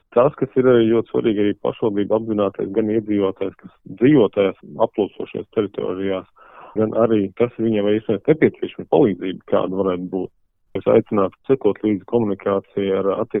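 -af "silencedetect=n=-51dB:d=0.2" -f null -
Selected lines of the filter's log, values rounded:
silence_start: 10.29
silence_end: 10.75 | silence_duration: 0.46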